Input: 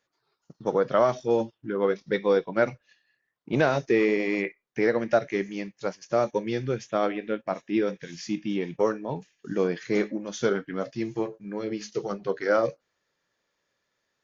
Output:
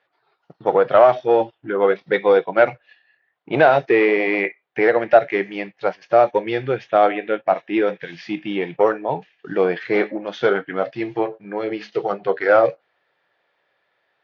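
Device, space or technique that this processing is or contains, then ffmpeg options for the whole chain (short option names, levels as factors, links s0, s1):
overdrive pedal into a guitar cabinet: -filter_complex "[0:a]asplit=2[s0][s1];[s1]highpass=f=720:p=1,volume=3.16,asoftclip=type=tanh:threshold=0.355[s2];[s0][s2]amix=inputs=2:normalize=0,lowpass=f=2800:p=1,volume=0.501,highpass=81,equalizer=f=230:t=q:w=4:g=-9,equalizer=f=740:t=q:w=4:g=7,equalizer=f=1100:t=q:w=4:g=-3,lowpass=f=3700:w=0.5412,lowpass=f=3700:w=1.3066,volume=2.11"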